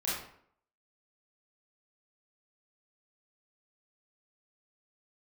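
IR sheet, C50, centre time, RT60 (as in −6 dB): 0.0 dB, 61 ms, 0.65 s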